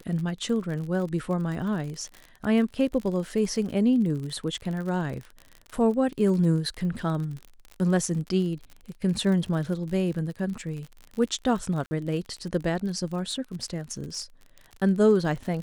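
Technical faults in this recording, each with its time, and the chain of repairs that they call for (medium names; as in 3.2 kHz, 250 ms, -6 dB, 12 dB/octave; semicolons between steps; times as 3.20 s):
crackle 46 per s -33 dBFS
11.86–11.91 s: dropout 50 ms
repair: de-click; interpolate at 11.86 s, 50 ms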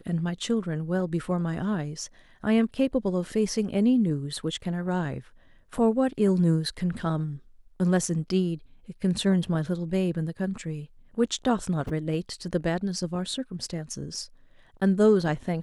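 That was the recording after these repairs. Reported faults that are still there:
nothing left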